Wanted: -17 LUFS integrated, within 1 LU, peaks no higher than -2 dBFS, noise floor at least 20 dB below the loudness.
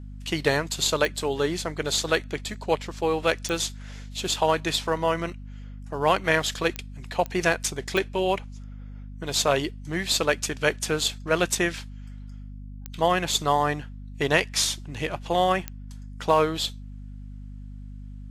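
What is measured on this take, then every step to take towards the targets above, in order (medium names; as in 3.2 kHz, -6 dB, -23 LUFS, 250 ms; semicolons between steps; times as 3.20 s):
clicks found 7; hum 50 Hz; highest harmonic 250 Hz; hum level -36 dBFS; loudness -25.5 LUFS; peak level -5.5 dBFS; loudness target -17.0 LUFS
-> de-click; hum notches 50/100/150/200/250 Hz; trim +8.5 dB; peak limiter -2 dBFS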